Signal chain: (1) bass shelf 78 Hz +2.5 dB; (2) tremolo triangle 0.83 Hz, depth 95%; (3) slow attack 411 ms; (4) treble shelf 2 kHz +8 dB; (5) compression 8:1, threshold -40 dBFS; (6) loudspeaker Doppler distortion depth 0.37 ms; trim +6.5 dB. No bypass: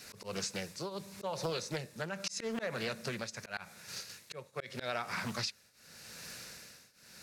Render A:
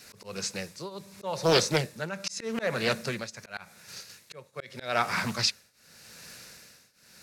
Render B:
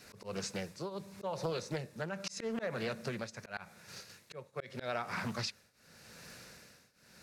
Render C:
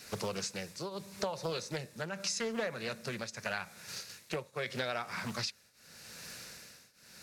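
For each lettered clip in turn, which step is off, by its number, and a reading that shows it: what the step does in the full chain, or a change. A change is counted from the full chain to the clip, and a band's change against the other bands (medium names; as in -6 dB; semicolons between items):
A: 5, mean gain reduction 3.5 dB; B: 4, 8 kHz band -5.0 dB; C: 3, momentary loudness spread change +1 LU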